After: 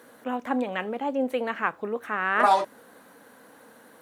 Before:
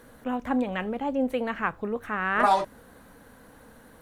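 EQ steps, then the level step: high-pass 270 Hz 12 dB/octave; +1.5 dB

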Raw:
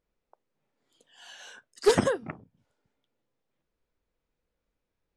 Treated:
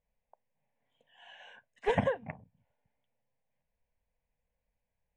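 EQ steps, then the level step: low-pass 2.7 kHz 12 dB/octave; static phaser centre 1.3 kHz, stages 6; 0.0 dB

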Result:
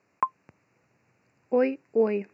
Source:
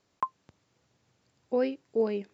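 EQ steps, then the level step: high-pass 110 Hz; Butterworth band-stop 3.3 kHz, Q 2.5; resonant high shelf 3.1 kHz -6 dB, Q 3; +4.0 dB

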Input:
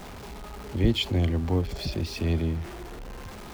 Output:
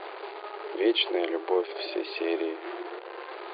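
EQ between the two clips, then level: brick-wall FIR band-pass 320–4800 Hz; distance through air 210 m; +6.5 dB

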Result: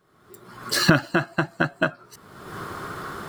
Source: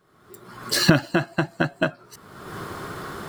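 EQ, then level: dynamic bell 1.3 kHz, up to +6 dB, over -41 dBFS, Q 2.1; -1.5 dB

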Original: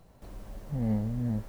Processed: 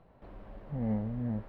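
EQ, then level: distance through air 470 m; bass shelf 240 Hz -8.5 dB; +2.5 dB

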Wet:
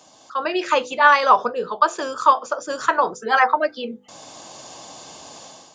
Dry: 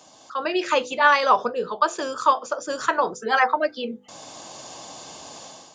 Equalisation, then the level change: dynamic bell 1.1 kHz, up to +4 dB, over -32 dBFS, Q 0.88; 0.0 dB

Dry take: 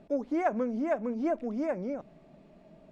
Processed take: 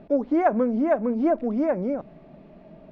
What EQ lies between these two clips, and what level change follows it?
dynamic bell 2.4 kHz, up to -4 dB, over -51 dBFS, Q 1.5; distance through air 210 m; +8.5 dB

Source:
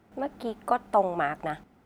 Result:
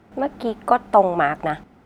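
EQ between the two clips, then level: treble shelf 8.1 kHz -9 dB; +8.5 dB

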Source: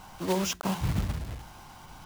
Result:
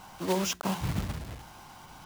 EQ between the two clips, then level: bass shelf 82 Hz -8.5 dB; 0.0 dB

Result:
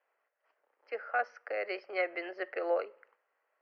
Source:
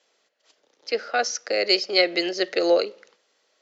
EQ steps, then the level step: boxcar filter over 12 samples; high-pass 900 Hz 12 dB/octave; distance through air 470 m; 0.0 dB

